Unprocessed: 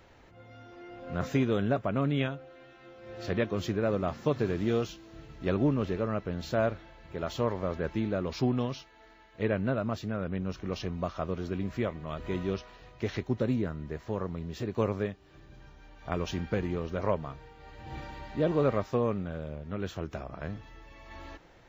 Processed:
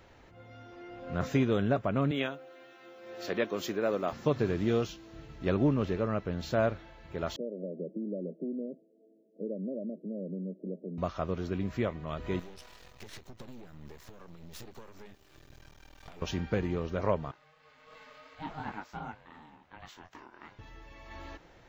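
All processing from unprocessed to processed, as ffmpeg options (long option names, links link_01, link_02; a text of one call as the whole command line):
ffmpeg -i in.wav -filter_complex "[0:a]asettb=1/sr,asplit=3[link_01][link_02][link_03];[link_01]atrim=end=2.114[link_04];[link_02]atrim=start=2.11:end=4.13,asetpts=PTS-STARTPTS,afade=type=in:duration=0.004:curve=qsin,afade=type=out:start_time=2.016:duration=0.004:curve=qsin,highpass=270,highshelf=frequency=9100:gain=12[link_05];[link_03]atrim=start=4.126[link_06];[link_04][link_05]acrossfade=duration=0.004:curve1=hsin:curve2=qsin[link_07];[link_07][link_06]acrossfade=duration=0.004:curve1=qsin:curve2=hsin,asettb=1/sr,asplit=3[link_08][link_09][link_10];[link_08]atrim=end=7.364[link_11];[link_09]atrim=start=7.36:end=10.98,asetpts=PTS-STARTPTS,afade=type=in:duration=0.004:curve=qsin,afade=type=out:start_time=3.616:duration=0.004:curve=qsin,acompressor=threshold=-30dB:ratio=4:attack=3.2:release=140:knee=1:detection=peak,asuperpass=centerf=320:order=20:qfactor=0.71[link_12];[link_10]atrim=start=10.976[link_13];[link_11][link_12]acrossfade=duration=0.004:curve1=hsin:curve2=qsin[link_14];[link_14][link_13]acrossfade=duration=0.004:curve1=qsin:curve2=hsin,asettb=1/sr,asplit=3[link_15][link_16][link_17];[link_15]atrim=end=12.394[link_18];[link_16]atrim=start=12.39:end=16.22,asetpts=PTS-STARTPTS,afade=type=in:duration=0.004:curve=qsin,afade=type=out:start_time=3.826:duration=0.004:curve=qsin,aemphasis=mode=production:type=75kf,acompressor=threshold=-37dB:ratio=16:attack=3.2:release=140:knee=1:detection=peak,aeval=exprs='max(val(0),0)':channel_layout=same[link_19];[link_17]atrim=start=16.216[link_20];[link_18][link_19]acrossfade=duration=0.004:curve1=hsin:curve2=qsin[link_21];[link_21][link_20]acrossfade=duration=0.004:curve1=qsin:curve2=hsin,asettb=1/sr,asplit=3[link_22][link_23][link_24];[link_22]atrim=end=17.314[link_25];[link_23]atrim=start=17.31:end=20.59,asetpts=PTS-STARTPTS,afade=type=in:duration=0.004:curve=qsin,afade=type=out:start_time=3.276:duration=0.004:curve=qsin,flanger=delay=19.5:depth=4.1:speed=2.8,highpass=710,aeval=exprs='val(0)*sin(2*PI*320*n/s)':channel_layout=same[link_26];[link_24]atrim=start=20.586[link_27];[link_25][link_26]acrossfade=duration=0.004:curve1=hsin:curve2=qsin[link_28];[link_28][link_27]acrossfade=duration=0.004:curve1=qsin:curve2=hsin" out.wav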